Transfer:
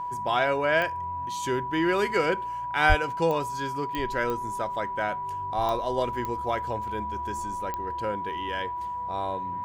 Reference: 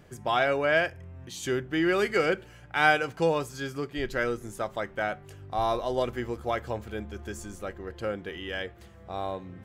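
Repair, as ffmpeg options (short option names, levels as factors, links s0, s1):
-filter_complex "[0:a]adeclick=t=4,bandreject=f=980:w=30,asplit=3[s0][s1][s2];[s0]afade=t=out:st=2.88:d=0.02[s3];[s1]highpass=f=140:w=0.5412,highpass=f=140:w=1.3066,afade=t=in:st=2.88:d=0.02,afade=t=out:st=3:d=0.02[s4];[s2]afade=t=in:st=3:d=0.02[s5];[s3][s4][s5]amix=inputs=3:normalize=0"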